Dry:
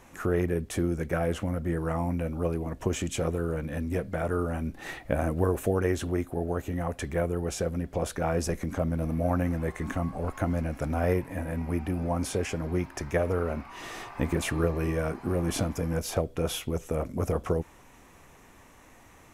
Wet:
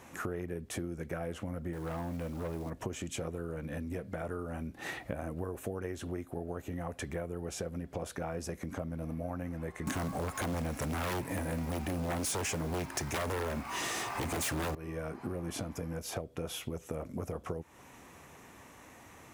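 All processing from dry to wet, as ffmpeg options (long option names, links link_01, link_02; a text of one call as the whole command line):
ffmpeg -i in.wav -filter_complex "[0:a]asettb=1/sr,asplit=3[link_01][link_02][link_03];[link_01]atrim=end=1.734[link_04];[link_02]atrim=start=1.73:end=2.7,asetpts=PTS-STARTPTS,afade=type=in:duration=0.004:curve=qsin,afade=type=out:start_time=0.966:duration=0.004:curve=qsin,acrusher=bits=5:mode=log:mix=0:aa=0.000001,asoftclip=type=hard:threshold=-27dB[link_05];[link_03]atrim=start=2.696[link_06];[link_04][link_05]acrossfade=duration=0.004:curve1=hsin:curve2=qsin[link_07];[link_07][link_06]acrossfade=duration=0.004:curve1=qsin:curve2=hsin,asettb=1/sr,asplit=3[link_08][link_09][link_10];[link_08]atrim=end=9.874[link_11];[link_09]atrim=start=9.87:end=14.75,asetpts=PTS-STARTPTS,afade=type=in:duration=0.004:curve=qsin,afade=type=out:start_time=4.876:duration=0.004:curve=qsin,equalizer=frequency=8300:width=0.67:gain=8.5,acrusher=bits=4:mode=log:mix=0:aa=0.000001,aeval=exprs='0.282*sin(PI/2*5.62*val(0)/0.282)':channel_layout=same[link_12];[link_10]atrim=start=14.746[link_13];[link_11][link_12]acrossfade=duration=0.004:curve1=hsin:curve2=qsin[link_14];[link_14][link_13]acrossfade=duration=0.004:curve1=qsin:curve2=hsin,acompressor=threshold=-36dB:ratio=6,highpass=74,volume=1dB" out.wav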